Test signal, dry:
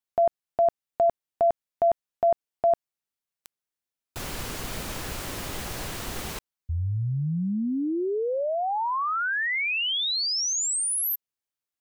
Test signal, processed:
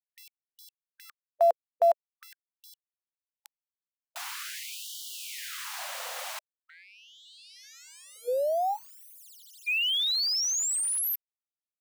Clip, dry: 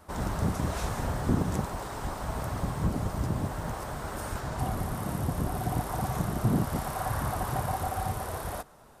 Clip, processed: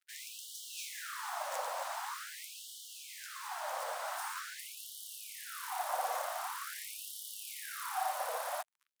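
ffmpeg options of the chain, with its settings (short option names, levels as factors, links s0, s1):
-af "highshelf=f=6200:g=-3,acrusher=bits=6:mix=0:aa=0.5,afftfilt=real='re*gte(b*sr/1024,470*pow(2900/470,0.5+0.5*sin(2*PI*0.45*pts/sr)))':imag='im*gte(b*sr/1024,470*pow(2900/470,0.5+0.5*sin(2*PI*0.45*pts/sr)))':win_size=1024:overlap=0.75"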